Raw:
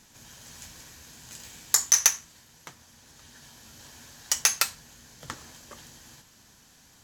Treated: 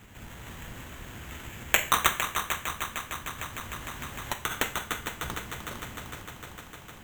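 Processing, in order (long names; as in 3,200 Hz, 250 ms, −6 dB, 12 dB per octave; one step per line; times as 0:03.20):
sub-octave generator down 1 octave, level +4 dB
in parallel at −1 dB: downward compressor, threshold −43 dBFS, peak gain reduction 26.5 dB
on the sum: parametric band 3,200 Hz −9.5 dB 2 octaves
sample-rate reduction 4,900 Hz, jitter 0%
high-shelf EQ 8,300 Hz +4 dB
echo machine with several playback heads 152 ms, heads second and third, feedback 72%, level −9 dB
four-comb reverb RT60 0.47 s, combs from 30 ms, DRR 12 dB
0:03.38–0:04.51: multiband upward and downward compressor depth 70%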